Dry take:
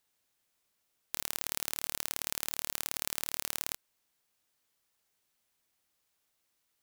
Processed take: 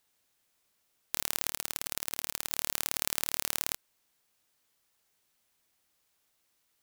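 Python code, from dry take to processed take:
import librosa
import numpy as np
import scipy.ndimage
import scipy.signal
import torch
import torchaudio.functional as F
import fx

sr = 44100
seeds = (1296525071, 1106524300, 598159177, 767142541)

y = fx.over_compress(x, sr, threshold_db=-41.0, ratio=-0.5, at=(1.48, 2.5))
y = y * 10.0 ** (3.5 / 20.0)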